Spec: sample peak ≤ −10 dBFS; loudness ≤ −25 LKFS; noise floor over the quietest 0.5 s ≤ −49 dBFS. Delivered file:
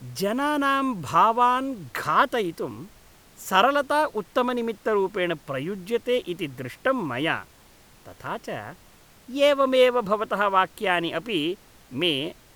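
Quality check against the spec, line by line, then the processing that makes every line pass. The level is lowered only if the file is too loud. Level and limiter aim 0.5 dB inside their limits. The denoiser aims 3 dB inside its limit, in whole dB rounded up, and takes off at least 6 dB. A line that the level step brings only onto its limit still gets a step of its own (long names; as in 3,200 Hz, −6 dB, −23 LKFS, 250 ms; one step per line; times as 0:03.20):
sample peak −5.5 dBFS: out of spec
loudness −24.0 LKFS: out of spec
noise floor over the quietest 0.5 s −53 dBFS: in spec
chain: level −1.5 dB
brickwall limiter −10.5 dBFS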